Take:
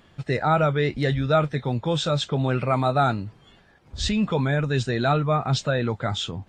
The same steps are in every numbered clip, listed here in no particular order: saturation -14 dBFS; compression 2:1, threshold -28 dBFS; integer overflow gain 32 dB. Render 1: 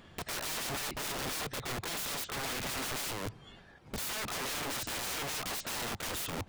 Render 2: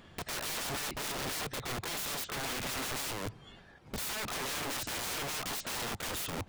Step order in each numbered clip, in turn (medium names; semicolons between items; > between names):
compression > integer overflow > saturation; compression > saturation > integer overflow